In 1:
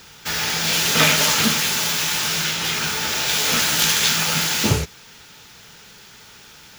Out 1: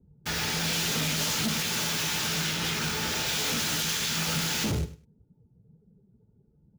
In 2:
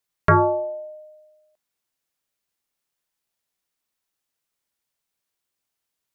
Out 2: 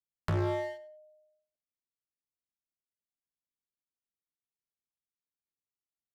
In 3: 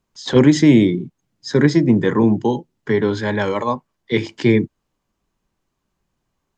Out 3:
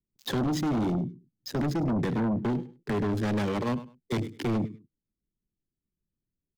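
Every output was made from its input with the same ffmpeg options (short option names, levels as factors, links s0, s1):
-filter_complex "[0:a]afftdn=nr=14:nf=-40,acrossover=split=360|3000[s0][s1][s2];[s1]acompressor=threshold=0.0562:ratio=6[s3];[s0][s3][s2]amix=inputs=3:normalize=0,highshelf=f=6800:g=-4.5,acrossover=split=430[s4][s5];[s5]aeval=exprs='sgn(val(0))*max(abs(val(0))-0.0266,0)':c=same[s6];[s4][s6]amix=inputs=2:normalize=0,alimiter=limit=0.2:level=0:latency=1:release=177,aecho=1:1:102|204:0.126|0.0227,asplit=2[s7][s8];[s8]aeval=exprs='0.237*sin(PI/2*3.98*val(0)/0.237)':c=same,volume=0.251[s9];[s7][s9]amix=inputs=2:normalize=0,volume=0.473"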